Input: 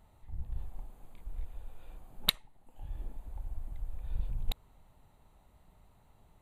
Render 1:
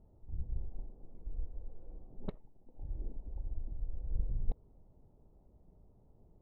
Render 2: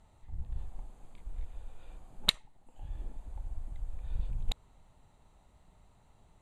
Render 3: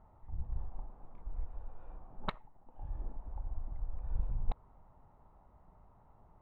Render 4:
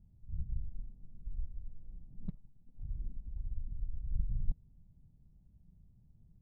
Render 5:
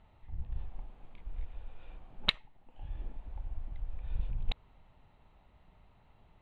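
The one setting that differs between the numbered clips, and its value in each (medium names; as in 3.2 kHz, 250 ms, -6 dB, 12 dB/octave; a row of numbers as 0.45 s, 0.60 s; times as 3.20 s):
resonant low-pass, frequency: 430 Hz, 7.7 kHz, 1.1 kHz, 170 Hz, 2.9 kHz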